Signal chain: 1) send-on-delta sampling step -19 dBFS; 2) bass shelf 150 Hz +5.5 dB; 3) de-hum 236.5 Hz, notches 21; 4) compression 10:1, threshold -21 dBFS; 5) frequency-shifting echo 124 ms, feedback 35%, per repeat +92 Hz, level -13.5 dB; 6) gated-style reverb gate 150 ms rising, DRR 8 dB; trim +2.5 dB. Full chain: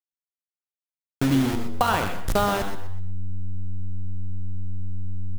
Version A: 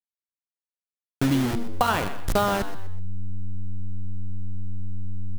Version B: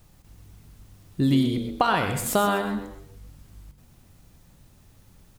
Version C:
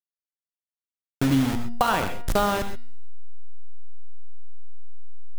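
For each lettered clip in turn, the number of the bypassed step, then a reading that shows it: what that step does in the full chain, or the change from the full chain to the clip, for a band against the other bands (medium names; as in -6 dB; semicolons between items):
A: 6, echo-to-direct -6.5 dB to -13.0 dB; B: 1, distortion -4 dB; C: 5, momentary loudness spread change -6 LU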